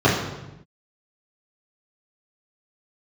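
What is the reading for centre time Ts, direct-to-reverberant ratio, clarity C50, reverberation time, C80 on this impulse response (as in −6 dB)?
49 ms, −9.5 dB, 3.5 dB, 0.95 s, 6.0 dB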